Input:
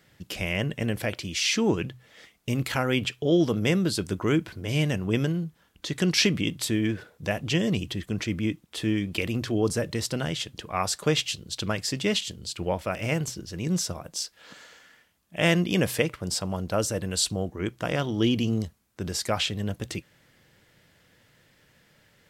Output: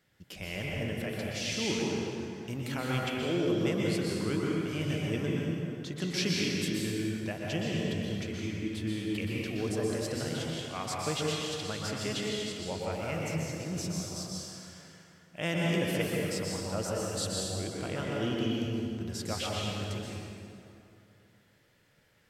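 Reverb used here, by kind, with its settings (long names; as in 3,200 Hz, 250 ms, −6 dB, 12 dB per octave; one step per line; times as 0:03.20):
dense smooth reverb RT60 2.7 s, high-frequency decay 0.65×, pre-delay 110 ms, DRR −4 dB
level −11 dB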